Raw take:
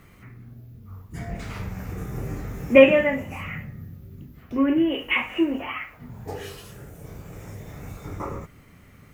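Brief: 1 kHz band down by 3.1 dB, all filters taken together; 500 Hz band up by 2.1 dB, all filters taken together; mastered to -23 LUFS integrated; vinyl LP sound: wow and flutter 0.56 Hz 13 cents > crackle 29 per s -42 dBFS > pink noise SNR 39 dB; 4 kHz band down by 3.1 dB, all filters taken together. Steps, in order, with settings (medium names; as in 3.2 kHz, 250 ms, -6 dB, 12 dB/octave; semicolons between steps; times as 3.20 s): peaking EQ 500 Hz +3.5 dB; peaking EQ 1 kHz -4.5 dB; peaking EQ 4 kHz -5 dB; wow and flutter 0.56 Hz 13 cents; crackle 29 per s -42 dBFS; pink noise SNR 39 dB; trim -1.5 dB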